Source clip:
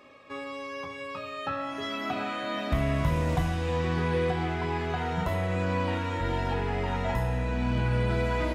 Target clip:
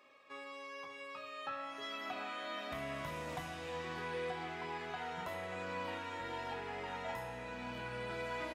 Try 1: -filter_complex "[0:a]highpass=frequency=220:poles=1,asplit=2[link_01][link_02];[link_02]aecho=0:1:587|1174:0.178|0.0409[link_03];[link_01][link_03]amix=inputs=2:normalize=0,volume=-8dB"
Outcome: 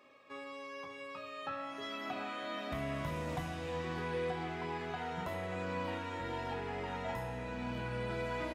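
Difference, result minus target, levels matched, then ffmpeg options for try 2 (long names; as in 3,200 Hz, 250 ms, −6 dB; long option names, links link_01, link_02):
250 Hz band +4.0 dB
-filter_complex "[0:a]highpass=frequency=680:poles=1,asplit=2[link_01][link_02];[link_02]aecho=0:1:587|1174:0.178|0.0409[link_03];[link_01][link_03]amix=inputs=2:normalize=0,volume=-8dB"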